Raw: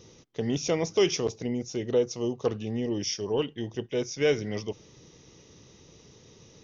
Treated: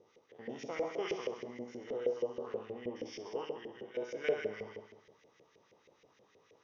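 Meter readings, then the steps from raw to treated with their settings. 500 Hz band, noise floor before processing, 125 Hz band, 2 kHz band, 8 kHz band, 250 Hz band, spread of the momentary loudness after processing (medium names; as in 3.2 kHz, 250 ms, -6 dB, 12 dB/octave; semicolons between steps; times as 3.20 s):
-9.5 dB, -56 dBFS, -22.0 dB, -7.5 dB, no reading, -15.0 dB, 11 LU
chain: spectrogram pixelated in time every 100 ms; flutter echo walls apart 11.3 m, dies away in 1.1 s; LFO band-pass saw up 6.3 Hz 480–2200 Hz; trim -1 dB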